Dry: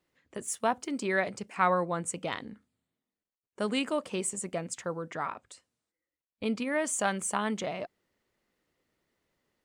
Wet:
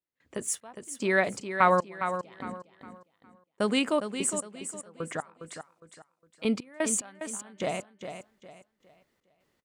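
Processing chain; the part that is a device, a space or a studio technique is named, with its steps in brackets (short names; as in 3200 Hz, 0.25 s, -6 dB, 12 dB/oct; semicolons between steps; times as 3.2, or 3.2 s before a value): 5.5–6.45 HPF 1200 Hz 6 dB/oct; trance gate with a delay (step gate ".xx..xx.x...x" 75 bpm -24 dB; feedback echo 0.409 s, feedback 31%, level -9 dB); gain +4 dB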